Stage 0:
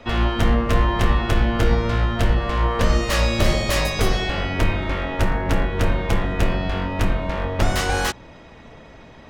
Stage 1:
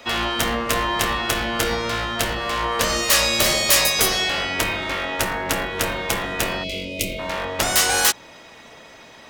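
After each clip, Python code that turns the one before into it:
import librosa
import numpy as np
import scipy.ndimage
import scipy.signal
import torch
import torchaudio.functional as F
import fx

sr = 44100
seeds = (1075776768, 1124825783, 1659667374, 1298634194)

y = fx.riaa(x, sr, side='recording')
y = fx.spec_box(y, sr, start_s=6.63, length_s=0.56, low_hz=660.0, high_hz=2000.0, gain_db=-28)
y = F.gain(torch.from_numpy(y), 1.5).numpy()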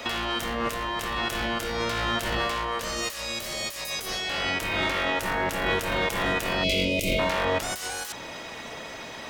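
y = fx.over_compress(x, sr, threshold_db=-29.0, ratio=-1.0)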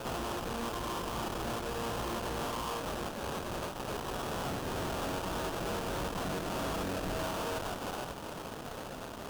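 y = fx.sample_hold(x, sr, seeds[0], rate_hz=2100.0, jitter_pct=20)
y = fx.tube_stage(y, sr, drive_db=33.0, bias=0.7)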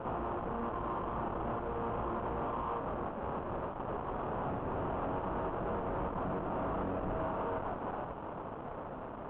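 y = fx.cvsd(x, sr, bps=16000)
y = fx.high_shelf_res(y, sr, hz=1500.0, db=-9.5, q=1.5)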